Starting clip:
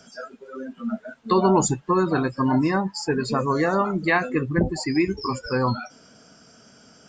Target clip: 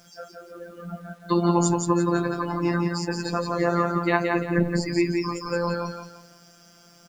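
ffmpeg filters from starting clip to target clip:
-af "aecho=1:1:172|344|516|688:0.631|0.202|0.0646|0.0207,afftfilt=real='hypot(re,im)*cos(PI*b)':imag='0':win_size=1024:overlap=0.75,acrusher=bits=9:mix=0:aa=0.000001"

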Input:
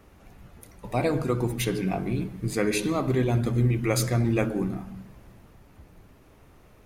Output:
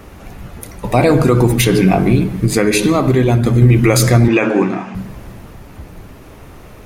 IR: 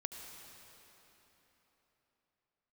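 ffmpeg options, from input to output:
-filter_complex "[0:a]asettb=1/sr,asplit=3[a][b][c];[a]atrim=end=2.154[d];[b]atrim=start=2.15:end=3.62,asetpts=PTS-STARTPTS,afade=t=in:d=0.004:c=qsin,afade=t=out:st=1.466:d=0.004:c=qsin,acompressor=threshold=-26dB:ratio=6[e];[c]atrim=start=3.616[f];[d][e]acrossfade=d=0.004:c1=hsin:c2=qsin[g];[g][f]acrossfade=d=0.004:c1=qsin:c2=hsin,asettb=1/sr,asplit=3[h][i][j];[h]atrim=end=4.284[k];[i]atrim=start=4.28:end=4.95,asetpts=PTS-STARTPTS,afade=t=in:d=0.004:c=qsin,afade=t=out:st=0.666:d=0.004:c=qsin,highpass=280,equalizer=f=980:t=q:w=4:g=6,equalizer=f=1.7k:t=q:w=4:g=5,equalizer=f=2.5k:t=q:w=4:g=8,equalizer=f=4.4k:t=q:w=4:g=-4,lowpass=f=6.8k:w=0.5412,lowpass=f=6.8k:w=1.3066[l];[j]atrim=start=4.946[m];[k][l]acrossfade=d=0.004:c1=hsin:c2=qsin[n];[n][m]acrossfade=d=0.004:c1=qsin:c2=hsin,alimiter=level_in=18dB:limit=-1dB:release=50:level=0:latency=1,volume=-1dB"

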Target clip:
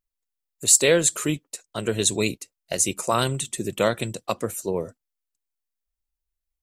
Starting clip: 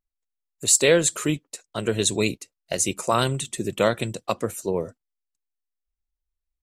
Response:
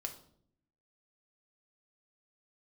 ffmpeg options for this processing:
-af "highshelf=f=8.1k:g=6.5,volume=-1dB"

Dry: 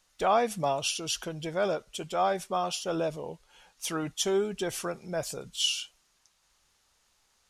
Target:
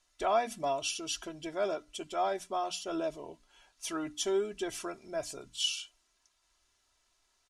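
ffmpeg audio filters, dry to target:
-af "lowpass=f=11k:w=0.5412,lowpass=f=11k:w=1.3066,bandreject=f=60:t=h:w=6,bandreject=f=120:t=h:w=6,bandreject=f=180:t=h:w=6,bandreject=f=240:t=h:w=6,bandreject=f=300:t=h:w=6,aecho=1:1:3:0.66,volume=-6dB"

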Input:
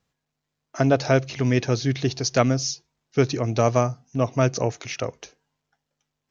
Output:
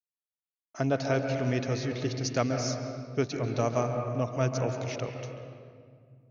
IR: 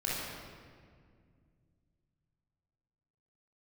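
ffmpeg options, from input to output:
-filter_complex "[0:a]agate=range=-33dB:threshold=-45dB:ratio=3:detection=peak,asplit=2[a][b];[b]bass=f=250:g=-4,treble=f=4k:g=-9[c];[1:a]atrim=start_sample=2205,lowpass=6k,adelay=138[d];[c][d]afir=irnorm=-1:irlink=0,volume=-10dB[e];[a][e]amix=inputs=2:normalize=0,volume=-8.5dB"

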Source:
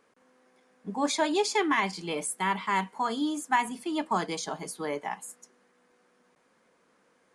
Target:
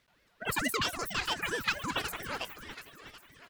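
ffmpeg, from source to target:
-filter_complex "[0:a]asetrate=92610,aresample=44100,asplit=8[a][b][c][d][e][f][g][h];[b]adelay=365,afreqshift=49,volume=-11dB[i];[c]adelay=730,afreqshift=98,volume=-15.6dB[j];[d]adelay=1095,afreqshift=147,volume=-20.2dB[k];[e]adelay=1460,afreqshift=196,volume=-24.7dB[l];[f]adelay=1825,afreqshift=245,volume=-29.3dB[m];[g]adelay=2190,afreqshift=294,volume=-33.9dB[n];[h]adelay=2555,afreqshift=343,volume=-38.5dB[o];[a][i][j][k][l][m][n][o]amix=inputs=8:normalize=0,aeval=exprs='val(0)*sin(2*PI*730*n/s+730*0.55/4.5*sin(2*PI*4.5*n/s))':c=same,volume=-2dB"

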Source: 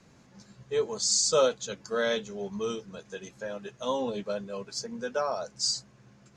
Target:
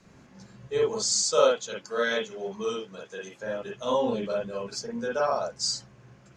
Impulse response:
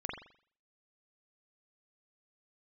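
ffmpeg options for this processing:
-filter_complex "[0:a]asettb=1/sr,asplit=3[a][b][c];[a]atrim=end=1.194[d];[b]atrim=start=1.19:end=3.43,asetpts=PTS-STARTPTS,afade=t=in:d=0.004:c=qsin,afade=t=out:st=2.236:d=0.004:c=qsin,highpass=f=370:p=1[e];[c]atrim=start=3.426[f];[d][e]acrossfade=d=0.004:c1=hsin:c2=qsin[g];[g][f]acrossfade=d=0.004:c1=qsin:c2=hsin[h];[1:a]atrim=start_sample=2205,atrim=end_sample=3087[i];[h][i]afir=irnorm=-1:irlink=0,volume=3dB"

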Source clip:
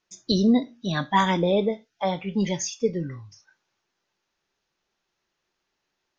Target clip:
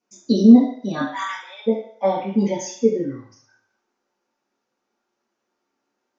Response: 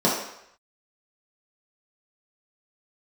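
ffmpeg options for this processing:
-filter_complex "[0:a]asplit=3[a][b][c];[a]afade=t=out:st=1.05:d=0.02[d];[b]highpass=f=1.4k:w=0.5412,highpass=f=1.4k:w=1.3066,afade=t=in:st=1.05:d=0.02,afade=t=out:st=1.66:d=0.02[e];[c]afade=t=in:st=1.66:d=0.02[f];[d][e][f]amix=inputs=3:normalize=0[g];[1:a]atrim=start_sample=2205,asetrate=57330,aresample=44100[h];[g][h]afir=irnorm=-1:irlink=0,volume=-14dB"

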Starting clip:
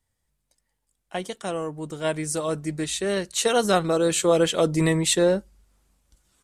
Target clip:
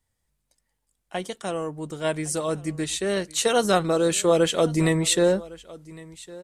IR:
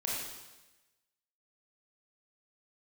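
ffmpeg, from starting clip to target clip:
-af "aecho=1:1:1108:0.0891"

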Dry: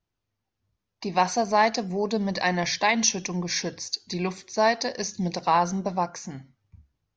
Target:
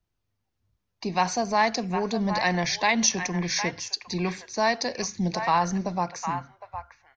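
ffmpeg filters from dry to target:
-filter_complex "[0:a]lowshelf=f=92:g=6.5,acrossover=split=230|740|3100[a][b][c][d];[b]alimiter=level_in=0.5dB:limit=-24dB:level=0:latency=1,volume=-0.5dB[e];[c]aecho=1:1:760:0.531[f];[a][e][f][d]amix=inputs=4:normalize=0"

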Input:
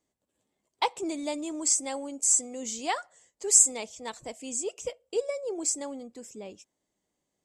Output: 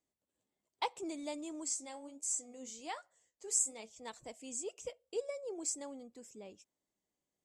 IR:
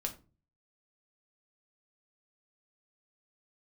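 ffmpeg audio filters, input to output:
-filter_complex "[0:a]asplit=3[a][b][c];[a]afade=t=out:st=1.64:d=0.02[d];[b]flanger=delay=8.9:depth=7.1:regen=57:speed=1.3:shape=sinusoidal,afade=t=in:st=1.64:d=0.02,afade=t=out:st=3.95:d=0.02[e];[c]afade=t=in:st=3.95:d=0.02[f];[d][e][f]amix=inputs=3:normalize=0,volume=-9dB"

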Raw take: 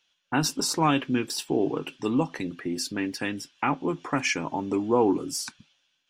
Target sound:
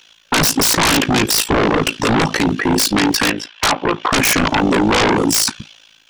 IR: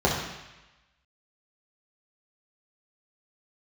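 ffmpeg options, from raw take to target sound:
-filter_complex "[0:a]asettb=1/sr,asplit=3[a][b][c];[a]atrim=end=3.304[d];[b]atrim=start=3.3:end=4.12,asetpts=PTS-STARTPTS,afade=t=in:d=0.004:c=qsin,afade=t=out:st=0.816:d=0.004:c=qsin,acrossover=split=490 3900:gain=0.158 1 0.0708[e][f][g];[e][f][g]amix=inputs=3:normalize=0[h];[c]atrim=start=4.116[i];[d][h]acrossfade=d=0.004:c1=hsin:c2=qsin[j];[j][i]acrossfade=d=0.004:c1=qsin:c2=hsin,acrossover=split=660[k][l];[k]asoftclip=type=tanh:threshold=-25dB[m];[m][l]amix=inputs=2:normalize=0,tremolo=f=55:d=0.889,aeval=exprs='0.2*sin(PI/2*8.91*val(0)/0.2)':c=same,volume=4dB"

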